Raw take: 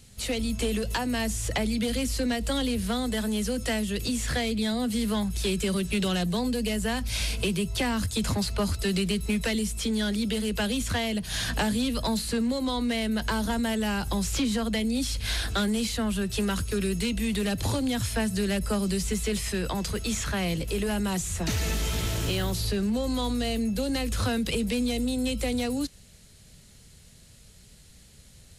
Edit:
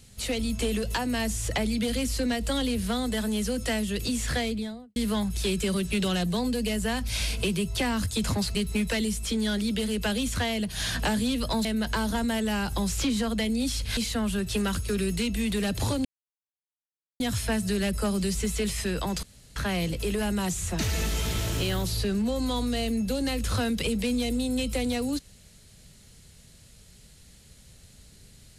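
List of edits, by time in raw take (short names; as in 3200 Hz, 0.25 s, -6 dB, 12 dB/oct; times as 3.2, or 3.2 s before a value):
4.37–4.96 studio fade out
8.55–9.09 cut
12.19–13 cut
15.32–15.8 cut
17.88 insert silence 1.15 s
19.91–20.24 room tone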